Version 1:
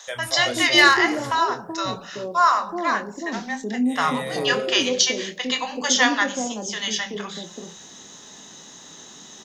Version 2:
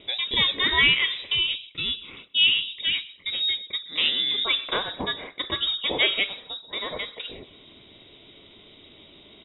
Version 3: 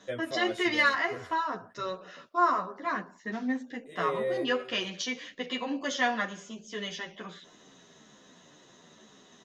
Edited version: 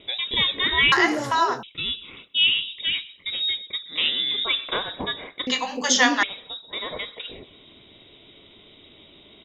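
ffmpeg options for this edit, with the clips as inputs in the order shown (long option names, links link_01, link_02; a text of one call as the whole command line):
ffmpeg -i take0.wav -i take1.wav -filter_complex "[0:a]asplit=2[link_01][link_02];[1:a]asplit=3[link_03][link_04][link_05];[link_03]atrim=end=0.922[link_06];[link_01]atrim=start=0.918:end=1.632[link_07];[link_04]atrim=start=1.628:end=5.472[link_08];[link_02]atrim=start=5.468:end=6.232[link_09];[link_05]atrim=start=6.228[link_10];[link_06][link_07]acrossfade=duration=0.004:curve1=hsin:curve2=hsin[link_11];[link_11][link_08]acrossfade=duration=0.004:curve1=hsin:curve2=hsin[link_12];[link_12][link_09]acrossfade=duration=0.004:curve1=hsin:curve2=hsin[link_13];[link_13][link_10]acrossfade=duration=0.004:curve1=hsin:curve2=hsin" out.wav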